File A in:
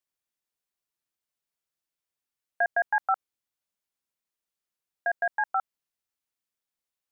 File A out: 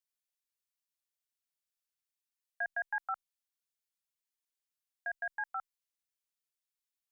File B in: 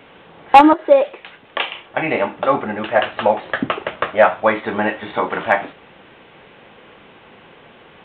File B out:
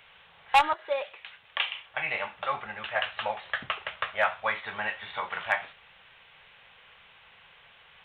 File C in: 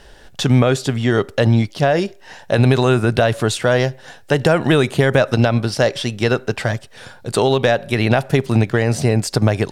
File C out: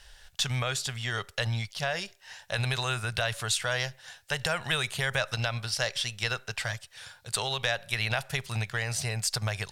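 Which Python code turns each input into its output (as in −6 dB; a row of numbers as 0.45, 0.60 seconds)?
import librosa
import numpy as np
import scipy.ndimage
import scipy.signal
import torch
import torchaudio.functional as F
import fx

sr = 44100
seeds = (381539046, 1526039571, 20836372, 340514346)

y = fx.tone_stack(x, sr, knobs='10-0-10')
y = y * 10.0 ** (-2.5 / 20.0)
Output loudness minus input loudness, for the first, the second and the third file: −10.0, −13.0, −13.0 LU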